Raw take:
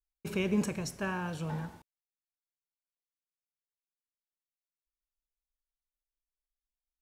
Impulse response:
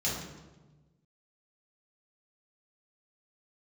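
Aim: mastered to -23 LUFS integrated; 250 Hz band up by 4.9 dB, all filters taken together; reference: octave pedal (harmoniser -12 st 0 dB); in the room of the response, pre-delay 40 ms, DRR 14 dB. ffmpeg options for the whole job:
-filter_complex "[0:a]equalizer=f=250:t=o:g=7,asplit=2[a][b];[1:a]atrim=start_sample=2205,adelay=40[c];[b][c]afir=irnorm=-1:irlink=0,volume=-21dB[d];[a][d]amix=inputs=2:normalize=0,asplit=2[e][f];[f]asetrate=22050,aresample=44100,atempo=2,volume=0dB[g];[e][g]amix=inputs=2:normalize=0,volume=5dB"

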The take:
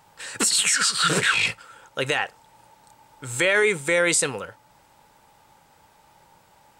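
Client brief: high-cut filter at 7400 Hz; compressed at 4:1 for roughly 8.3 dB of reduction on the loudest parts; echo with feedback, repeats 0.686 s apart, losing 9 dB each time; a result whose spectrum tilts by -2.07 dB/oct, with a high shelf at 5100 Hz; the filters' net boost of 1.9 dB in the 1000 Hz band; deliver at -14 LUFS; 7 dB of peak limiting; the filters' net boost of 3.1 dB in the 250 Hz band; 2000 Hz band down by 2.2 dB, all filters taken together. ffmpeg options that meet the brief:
-af "lowpass=7.4k,equalizer=f=250:t=o:g=4.5,equalizer=f=1k:t=o:g=5,equalizer=f=2k:t=o:g=-5.5,highshelf=f=5.1k:g=6.5,acompressor=threshold=-26dB:ratio=4,alimiter=limit=-20dB:level=0:latency=1,aecho=1:1:686|1372|2058|2744:0.355|0.124|0.0435|0.0152,volume=17dB"

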